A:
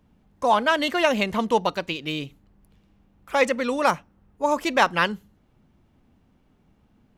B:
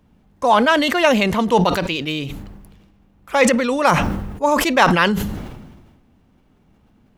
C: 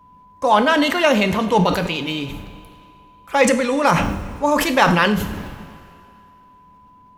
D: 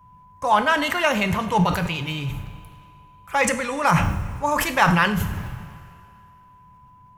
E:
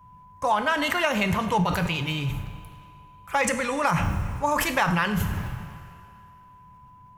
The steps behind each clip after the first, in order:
sustainer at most 41 dB/s; gain +4.5 dB
whine 1000 Hz -48 dBFS; two-slope reverb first 0.46 s, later 2.6 s, from -14 dB, DRR 7 dB; gain -1.5 dB
ten-band EQ 125 Hz +10 dB, 250 Hz -11 dB, 500 Hz -7 dB, 4000 Hz -7 dB
compressor 6:1, threshold -19 dBFS, peak gain reduction 7.5 dB

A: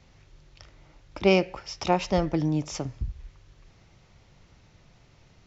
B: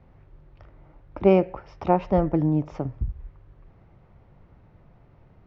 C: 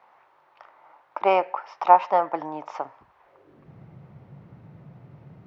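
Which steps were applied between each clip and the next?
LPF 1200 Hz 12 dB/oct; gain +3.5 dB
high-pass sweep 920 Hz -> 140 Hz, 3.2–3.72; gain +4.5 dB

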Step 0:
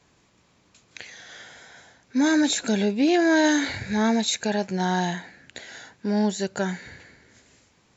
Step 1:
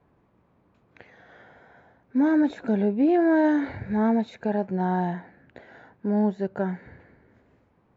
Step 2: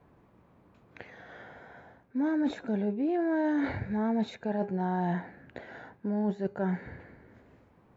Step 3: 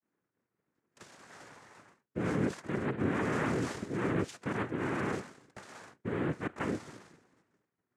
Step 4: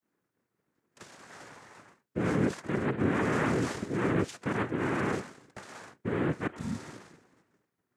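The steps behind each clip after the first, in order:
LPF 1100 Hz 12 dB/oct
de-hum 407.9 Hz, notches 30; reverse; compressor 6:1, threshold -30 dBFS, peak gain reduction 12.5 dB; reverse; gain +3 dB
expander -48 dBFS; noise vocoder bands 3; gain -3.5 dB
spectral repair 6.55–6.85, 260–3400 Hz after; gain +3.5 dB

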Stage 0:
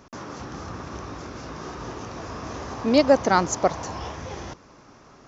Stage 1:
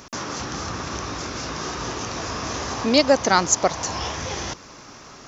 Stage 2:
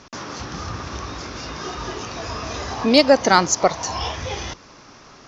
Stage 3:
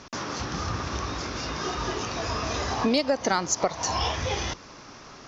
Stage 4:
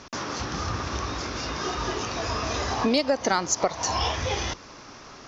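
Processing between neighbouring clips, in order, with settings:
high shelf 2000 Hz +11.5 dB; in parallel at +2 dB: compressor, threshold -30 dBFS, peak gain reduction 18.5 dB; on the sum: gain -2.5 dB
LPF 6000 Hz 24 dB/oct; spectral noise reduction 6 dB; in parallel at -10 dB: soft clip -12.5 dBFS, distortion -12 dB; on the sum: gain +1.5 dB
compressor 10:1, threshold -20 dBFS, peak gain reduction 12.5 dB
bell 160 Hz -2.5 dB; gain +1 dB

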